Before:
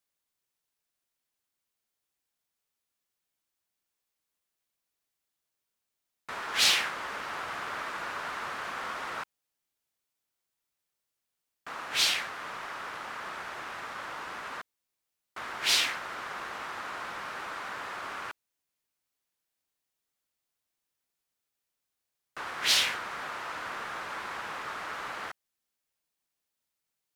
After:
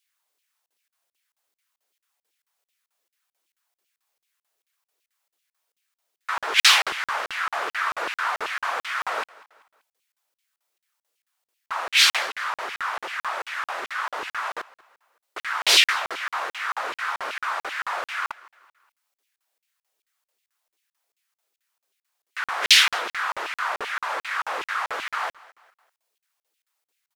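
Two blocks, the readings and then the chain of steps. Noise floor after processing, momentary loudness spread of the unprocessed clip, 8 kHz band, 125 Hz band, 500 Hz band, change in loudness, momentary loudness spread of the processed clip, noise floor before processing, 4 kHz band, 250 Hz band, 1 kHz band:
under -85 dBFS, 17 LU, +6.5 dB, no reading, +7.0 dB, +8.5 dB, 16 LU, -85 dBFS, +8.0 dB, 0.0 dB, +9.0 dB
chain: LFO high-pass saw down 2.6 Hz 350–2900 Hz; feedback delay 193 ms, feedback 42%, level -22 dB; crackling interface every 0.22 s, samples 2048, zero, from 0.66 s; trim +7 dB

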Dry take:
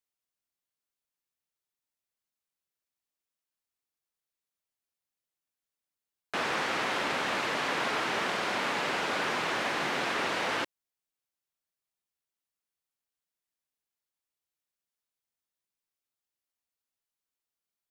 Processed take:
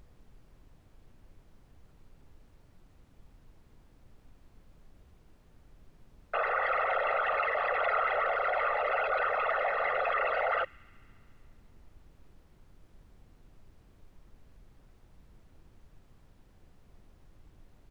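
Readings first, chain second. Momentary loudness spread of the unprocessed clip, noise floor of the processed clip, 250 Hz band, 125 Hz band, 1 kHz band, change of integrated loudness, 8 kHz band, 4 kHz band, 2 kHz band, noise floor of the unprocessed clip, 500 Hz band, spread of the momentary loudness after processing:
2 LU, -61 dBFS, under -15 dB, no reading, +2.5 dB, +0.5 dB, under -25 dB, -13.0 dB, -0.5 dB, under -85 dBFS, +4.0 dB, 3 LU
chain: resonances exaggerated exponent 3; high-pass 530 Hz 12 dB/octave; comb 1.5 ms, depth 79%; added noise brown -55 dBFS; on a send: feedback echo behind a high-pass 70 ms, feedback 83%, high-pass 2 kHz, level -23.5 dB

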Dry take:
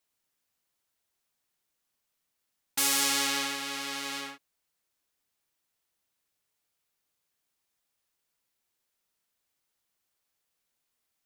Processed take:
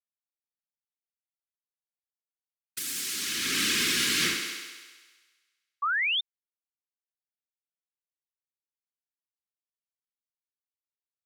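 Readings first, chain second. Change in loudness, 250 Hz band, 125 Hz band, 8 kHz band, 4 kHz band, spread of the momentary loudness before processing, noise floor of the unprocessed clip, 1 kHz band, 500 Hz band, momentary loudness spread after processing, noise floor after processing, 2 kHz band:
+2.0 dB, +2.5 dB, +9.5 dB, +1.0 dB, +4.5 dB, 12 LU, -82 dBFS, +1.0 dB, -0.5 dB, 15 LU, under -85 dBFS, +7.0 dB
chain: Chebyshev band-stop 300–1600 Hz, order 2; compressor with a negative ratio -40 dBFS, ratio -1; crossover distortion -58 dBFS; whisper effect; treble shelf 5.3 kHz +6 dB; thinning echo 66 ms, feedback 73%, high-pass 160 Hz, level -8.5 dB; in parallel at -2 dB: peak limiter -34.5 dBFS, peak gain reduction 12.5 dB; on the sum: painted sound rise, 5.82–6.21 s, 1.1–3.7 kHz -32 dBFS; trim +5.5 dB

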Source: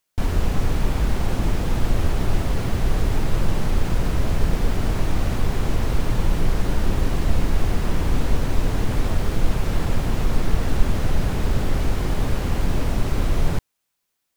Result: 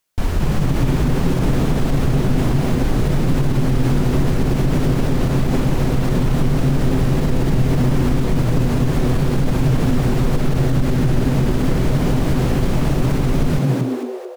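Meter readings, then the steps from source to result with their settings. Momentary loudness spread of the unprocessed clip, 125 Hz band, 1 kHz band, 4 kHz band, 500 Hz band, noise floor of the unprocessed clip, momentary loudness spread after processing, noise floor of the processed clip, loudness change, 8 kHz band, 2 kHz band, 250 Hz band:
1 LU, +7.5 dB, +3.5 dB, +3.0 dB, +7.0 dB, -76 dBFS, 1 LU, -21 dBFS, +6.0 dB, +3.0 dB, +3.0 dB, +9.5 dB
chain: frequency-shifting echo 221 ms, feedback 49%, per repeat +120 Hz, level -3 dB; loudness maximiser +9.5 dB; trim -7 dB

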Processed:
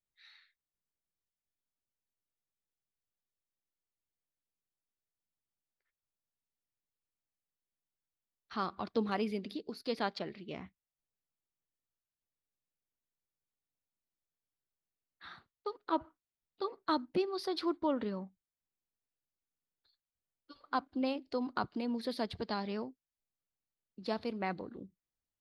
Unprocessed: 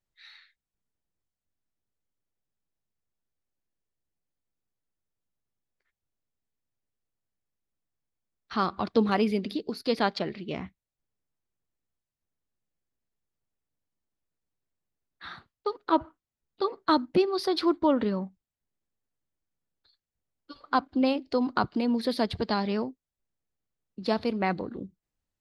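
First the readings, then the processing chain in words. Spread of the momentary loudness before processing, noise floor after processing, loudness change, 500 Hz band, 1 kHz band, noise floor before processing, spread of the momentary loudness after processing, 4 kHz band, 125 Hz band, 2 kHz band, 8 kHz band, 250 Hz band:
13 LU, under -85 dBFS, -9.0 dB, -9.0 dB, -8.5 dB, under -85 dBFS, 13 LU, -8.5 dB, -10.0 dB, -8.5 dB, no reading, -9.5 dB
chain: bass shelf 200 Hz -3 dB; trim -8.5 dB

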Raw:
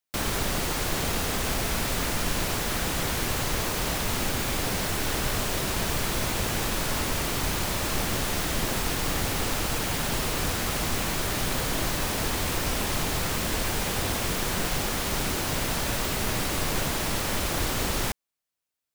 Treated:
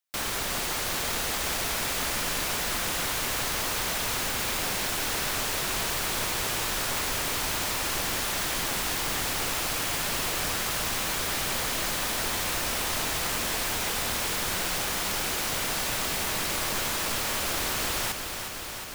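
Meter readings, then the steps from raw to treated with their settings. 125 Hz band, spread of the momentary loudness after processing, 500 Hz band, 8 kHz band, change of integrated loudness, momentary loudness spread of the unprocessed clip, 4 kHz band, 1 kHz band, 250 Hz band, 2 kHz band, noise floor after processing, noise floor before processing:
-8.5 dB, 0 LU, -3.5 dB, +1.5 dB, 0.0 dB, 0 LU, +1.0 dB, -0.5 dB, -6.5 dB, +0.5 dB, -34 dBFS, -72 dBFS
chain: bass shelf 460 Hz -10.5 dB; bit-crushed delay 361 ms, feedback 80%, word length 9-bit, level -8 dB

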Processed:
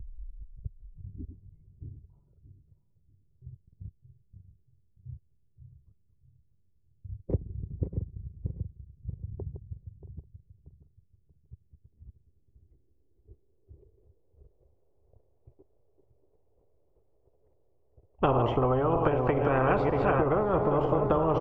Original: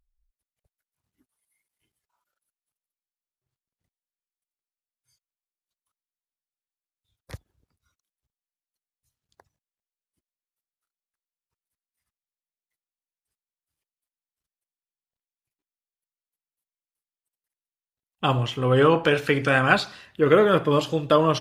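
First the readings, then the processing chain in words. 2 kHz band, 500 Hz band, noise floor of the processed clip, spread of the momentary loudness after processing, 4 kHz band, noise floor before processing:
-12.5 dB, -4.5 dB, -67 dBFS, 21 LU, under -15 dB, under -85 dBFS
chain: backward echo that repeats 316 ms, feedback 54%, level -9.5 dB; fifteen-band graphic EQ 400 Hz +12 dB, 1.6 kHz -11 dB, 4 kHz -10 dB; compression 16:1, threshold -23 dBFS, peak gain reduction 18.5 dB; low-pass sweep 180 Hz -> 590 Hz, 11.49–14.87 s; resonant low shelf 140 Hz +14 dB, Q 1.5; delay 676 ms -23 dB; spectrum-flattening compressor 4:1; trim +1.5 dB

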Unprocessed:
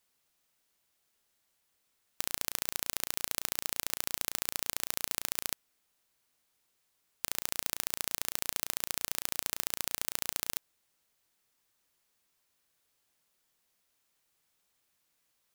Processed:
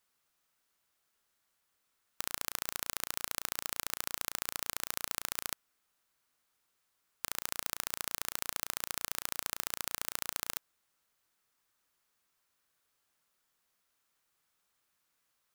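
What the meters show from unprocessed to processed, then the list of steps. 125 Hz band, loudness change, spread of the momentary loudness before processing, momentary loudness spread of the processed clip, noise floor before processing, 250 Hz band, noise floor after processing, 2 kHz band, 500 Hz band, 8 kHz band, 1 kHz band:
-3.0 dB, -2.5 dB, 3 LU, 3 LU, -77 dBFS, -3.0 dB, -79 dBFS, -0.5 dB, -2.5 dB, -3.0 dB, +1.0 dB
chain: peaking EQ 1.3 kHz +6 dB 0.87 oct; trim -3 dB

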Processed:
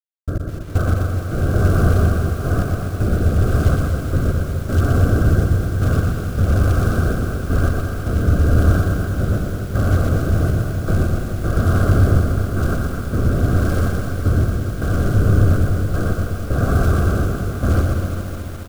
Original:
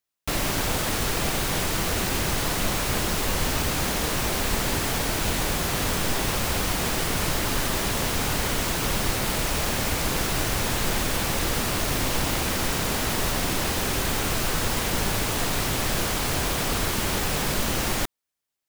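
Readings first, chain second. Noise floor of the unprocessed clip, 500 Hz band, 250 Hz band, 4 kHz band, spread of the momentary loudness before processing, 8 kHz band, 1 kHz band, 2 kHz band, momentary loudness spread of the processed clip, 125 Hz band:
-27 dBFS, +5.0 dB, +8.0 dB, -13.0 dB, 0 LU, -12.0 dB, -0.5 dB, -1.5 dB, 7 LU, +15.0 dB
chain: Chebyshev low-pass 1.6 kHz, order 10; peaking EQ 86 Hz +14.5 dB 0.94 oct; in parallel at 0 dB: peak limiter -21 dBFS, peak gain reduction 11 dB; on the sum: level rider gain up to 3.5 dB; companded quantiser 6-bit; trance gate "xx..x..xx" 80 bpm -24 dB; rotary cabinet horn 1 Hz; Butterworth band-stop 910 Hz, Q 2.2; on a send: reverse bouncing-ball echo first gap 120 ms, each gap 1.1×, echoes 5; on the sum: bit-crushed delay 209 ms, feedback 80%, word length 6-bit, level -9 dB

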